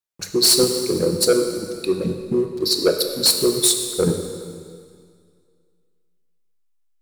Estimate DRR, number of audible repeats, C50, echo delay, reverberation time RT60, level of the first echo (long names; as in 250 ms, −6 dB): 4.5 dB, no echo audible, 6.0 dB, no echo audible, 2.1 s, no echo audible